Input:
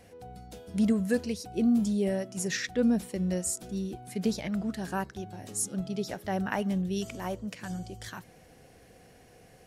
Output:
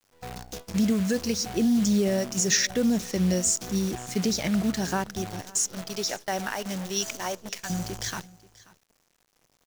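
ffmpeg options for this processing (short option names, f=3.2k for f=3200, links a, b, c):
-filter_complex "[0:a]asettb=1/sr,asplit=3[a][b][c];[a]atrim=end=5.414[d];[b]atrim=start=5.41:end=7.7,asetpts=PTS-STARTPTS,afade=t=in:d=0.004:c=qsin,afade=t=out:st=2.286:d=0.004:c=qsin,highpass=f=660:p=1[e];[c]atrim=start=7.696[f];[d][e]acrossfade=d=0.004:c1=hsin:c2=qsin[g];[g][f]acrossfade=d=0.004:c1=qsin:c2=hsin,agate=range=-17dB:threshold=-46dB:ratio=16:detection=peak,alimiter=limit=-23dB:level=0:latency=1:release=186,lowpass=f=6.2k:t=q:w=3.6,acrusher=bits=8:dc=4:mix=0:aa=0.000001,aecho=1:1:534:0.0841,volume=6.5dB"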